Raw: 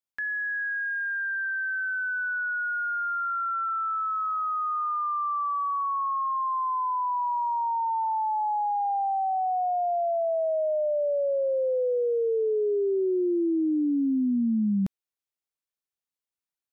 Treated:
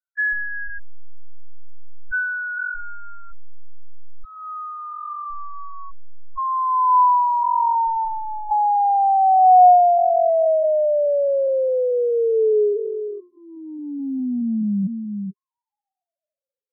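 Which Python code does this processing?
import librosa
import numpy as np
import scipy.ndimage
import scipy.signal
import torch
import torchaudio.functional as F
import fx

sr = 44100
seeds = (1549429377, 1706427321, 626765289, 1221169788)

p1 = fx.tracing_dist(x, sr, depth_ms=0.16)
p2 = fx.filter_lfo_lowpass(p1, sr, shape='saw_down', hz=0.47, low_hz=380.0, high_hz=1500.0, q=7.0)
p3 = p2 + fx.echo_single(p2, sr, ms=439, db=-13.0, dry=0)
p4 = fx.spec_topn(p3, sr, count=2)
p5 = fx.over_compress(p4, sr, threshold_db=-29.0, ratio=-1.0)
p6 = p4 + (p5 * 10.0 ** (2.0 / 20.0))
p7 = fx.fixed_phaser(p6, sr, hz=1300.0, stages=6)
y = fx.dynamic_eq(p7, sr, hz=330.0, q=0.78, threshold_db=-29.0, ratio=4.0, max_db=3)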